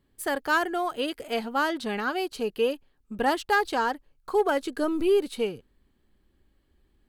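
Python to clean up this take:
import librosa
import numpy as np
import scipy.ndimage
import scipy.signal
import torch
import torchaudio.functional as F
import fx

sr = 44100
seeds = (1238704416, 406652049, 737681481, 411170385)

y = fx.fix_declip(x, sr, threshold_db=-15.0)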